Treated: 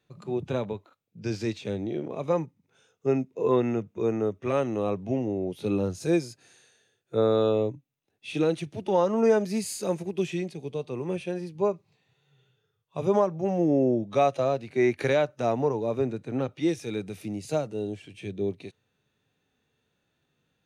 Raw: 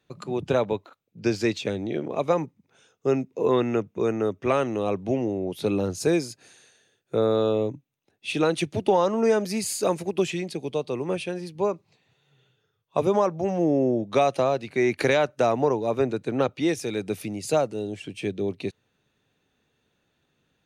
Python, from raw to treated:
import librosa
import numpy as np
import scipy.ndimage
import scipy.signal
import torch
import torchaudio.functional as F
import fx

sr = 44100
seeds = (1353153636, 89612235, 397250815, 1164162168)

y = fx.hpss(x, sr, part='percussive', gain_db=-12)